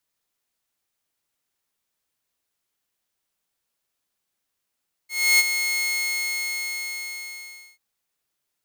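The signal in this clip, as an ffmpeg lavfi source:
-f lavfi -i "aevalsrc='0.299*(2*mod(2160*t,1)-1)':d=2.69:s=44100,afade=t=in:d=0.302,afade=t=out:st=0.302:d=0.032:silence=0.355,afade=t=out:st=0.7:d=1.99"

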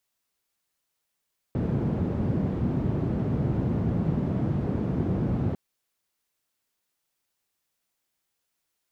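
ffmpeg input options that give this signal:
-f lavfi -i "anoisesrc=c=white:d=4:r=44100:seed=1,highpass=f=100,lowpass=f=170,volume=2.7dB"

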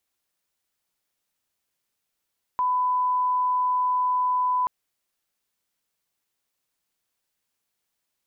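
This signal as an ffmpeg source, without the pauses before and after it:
-f lavfi -i "sine=f=1000:d=2.08:r=44100,volume=-1.94dB"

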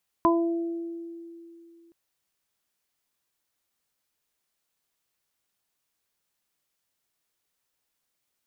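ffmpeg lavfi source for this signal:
-f lavfi -i "aevalsrc='0.112*pow(10,-3*t/2.85)*sin(2*PI*336*t)+0.0596*pow(10,-3*t/1.1)*sin(2*PI*672*t)+0.158*pow(10,-3*t/0.3)*sin(2*PI*1008*t)':d=1.67:s=44100"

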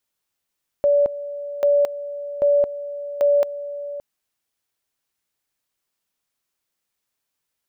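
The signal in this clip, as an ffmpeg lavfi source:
-f lavfi -i "aevalsrc='pow(10,(-13-14.5*gte(mod(t,0.79),0.22))/20)*sin(2*PI*575*t)':d=3.16:s=44100"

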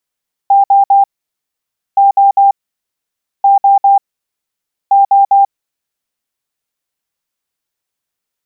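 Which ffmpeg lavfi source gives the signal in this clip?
-f lavfi -i "aevalsrc='0.631*sin(2*PI*794*t)*clip(min(mod(mod(t,1.47),0.2),0.14-mod(mod(t,1.47),0.2))/0.005,0,1)*lt(mod(t,1.47),0.6)':d=5.88:s=44100"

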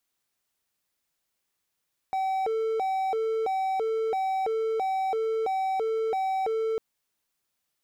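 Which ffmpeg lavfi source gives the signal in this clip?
-f lavfi -i "aevalsrc='0.075*(1-4*abs(mod((605*t+160/1.5*(0.5-abs(mod(1.5*t,1)-0.5)))+0.25,1)-0.5))':d=4.65:s=44100"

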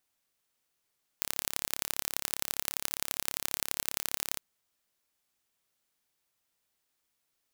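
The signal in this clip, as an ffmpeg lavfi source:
-f lavfi -i "aevalsrc='0.841*eq(mod(n,1264),0)*(0.5+0.5*eq(mod(n,3792),0))':d=3.16:s=44100"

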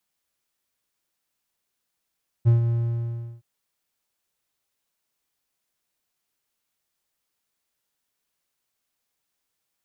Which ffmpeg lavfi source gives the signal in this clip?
-f lavfi -i "aevalsrc='0.316*(1-4*abs(mod(117*t+0.25,1)-0.5))':d=0.967:s=44100,afade=t=in:d=0.027,afade=t=out:st=0.027:d=0.129:silence=0.422,afade=t=out:st=0.23:d=0.737"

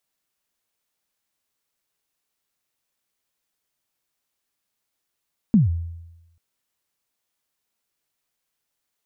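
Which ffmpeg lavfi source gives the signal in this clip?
-f lavfi -i "aevalsrc='0.335*pow(10,-3*t/0.99)*sin(2*PI*(240*0.147/log(84/240)*(exp(log(84/240)*min(t,0.147)/0.147)-1)+84*max(t-0.147,0)))':d=0.84:s=44100"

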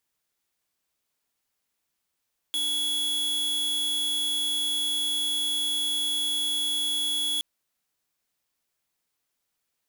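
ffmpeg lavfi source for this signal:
-f lavfi -i "aevalsrc='0.0447*(2*lt(mod(3370*t,1),0.5)-1)':d=4.87:s=44100"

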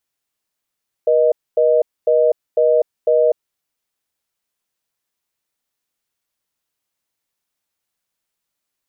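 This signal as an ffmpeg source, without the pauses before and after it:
-f lavfi -i "aevalsrc='0.211*(sin(2*PI*480*t)+sin(2*PI*620*t))*clip(min(mod(t,0.5),0.25-mod(t,0.5))/0.005,0,1)':d=2.46:s=44100"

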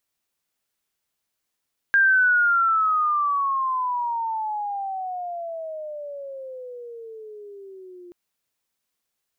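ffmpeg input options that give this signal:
-f lavfi -i "aevalsrc='pow(10,(-13.5-26.5*t/6.18)/20)*sin(2*PI*1610*6.18/(-26.5*log(2)/12)*(exp(-26.5*log(2)/12*t/6.18)-1))':d=6.18:s=44100"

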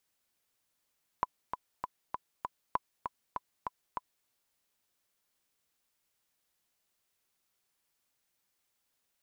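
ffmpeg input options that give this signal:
-f lavfi -i "aevalsrc='pow(10,(-15-6.5*gte(mod(t,5*60/197),60/197))/20)*sin(2*PI*1000*mod(t,60/197))*exp(-6.91*mod(t,60/197)/0.03)':d=3.04:s=44100"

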